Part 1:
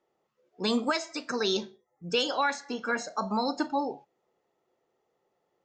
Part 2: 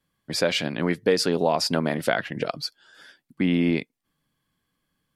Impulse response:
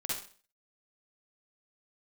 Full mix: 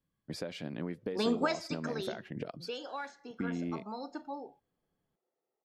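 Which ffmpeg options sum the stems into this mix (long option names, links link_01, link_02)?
-filter_complex "[0:a]highpass=frequency=470:poles=1,highshelf=frequency=7300:gain=-8,bandreject=frequency=1000:width=21,adelay=550,volume=-0.5dB,afade=type=out:start_time=1.68:duration=0.39:silence=0.316228[link_01];[1:a]acompressor=threshold=-26dB:ratio=6,volume=-10.5dB[link_02];[link_01][link_02]amix=inputs=2:normalize=0,tiltshelf=frequency=740:gain=5"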